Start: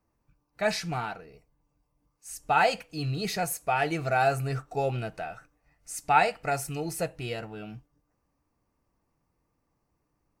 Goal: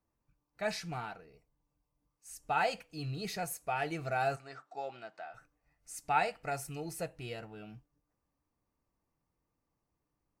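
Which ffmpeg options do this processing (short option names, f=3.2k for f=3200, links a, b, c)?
-filter_complex "[0:a]asplit=3[a][b][c];[a]afade=t=out:st=4.35:d=0.02[d];[b]highpass=440,equalizer=f=460:t=q:w=4:g=-9,equalizer=f=2.6k:t=q:w=4:g=-6,equalizer=f=6k:t=q:w=4:g=-6,lowpass=f=6.7k:w=0.5412,lowpass=f=6.7k:w=1.3066,afade=t=in:st=4.35:d=0.02,afade=t=out:st=5.33:d=0.02[e];[c]afade=t=in:st=5.33:d=0.02[f];[d][e][f]amix=inputs=3:normalize=0,volume=-8dB"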